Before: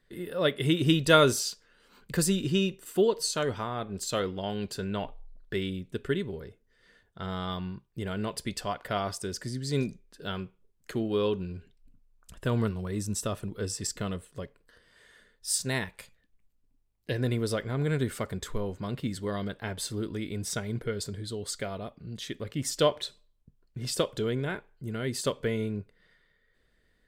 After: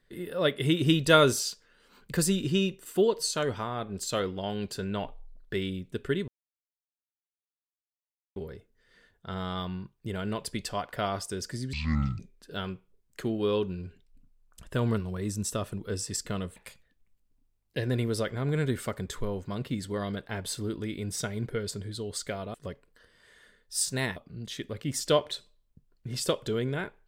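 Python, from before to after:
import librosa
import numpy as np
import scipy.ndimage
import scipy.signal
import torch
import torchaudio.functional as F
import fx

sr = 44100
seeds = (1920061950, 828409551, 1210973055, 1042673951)

y = fx.edit(x, sr, fx.insert_silence(at_s=6.28, length_s=2.08),
    fx.speed_span(start_s=9.65, length_s=0.25, speed=0.54),
    fx.move(start_s=14.27, length_s=1.62, to_s=21.87), tone=tone)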